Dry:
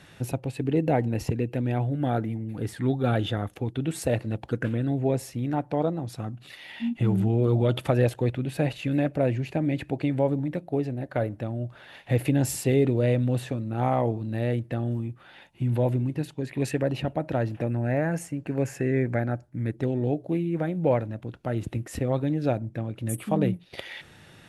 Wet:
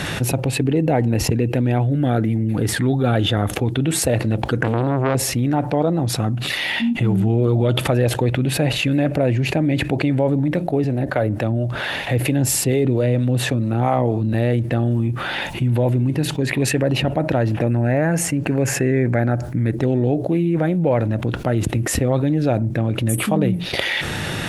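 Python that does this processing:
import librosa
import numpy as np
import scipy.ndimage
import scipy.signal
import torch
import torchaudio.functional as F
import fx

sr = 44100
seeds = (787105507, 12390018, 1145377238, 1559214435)

y = fx.peak_eq(x, sr, hz=880.0, db=-6.5, octaves=0.77, at=(1.83, 2.51))
y = fx.transformer_sat(y, sr, knee_hz=930.0, at=(4.63, 5.15))
y = fx.harmonic_tremolo(y, sr, hz=4.4, depth_pct=50, crossover_hz=400.0, at=(10.84, 14.34))
y = fx.env_flatten(y, sr, amount_pct=70)
y = y * librosa.db_to_amplitude(3.0)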